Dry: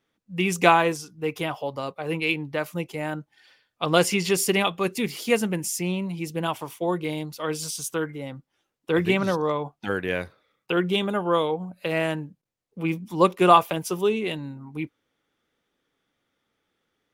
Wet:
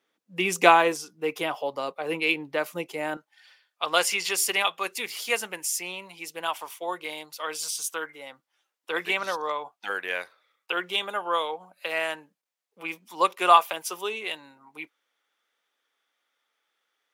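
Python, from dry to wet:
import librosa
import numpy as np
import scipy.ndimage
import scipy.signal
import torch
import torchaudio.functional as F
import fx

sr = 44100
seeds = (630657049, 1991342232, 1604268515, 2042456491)

y = fx.highpass(x, sr, hz=fx.steps((0.0, 340.0), (3.17, 790.0)), slope=12)
y = y * librosa.db_to_amplitude(1.0)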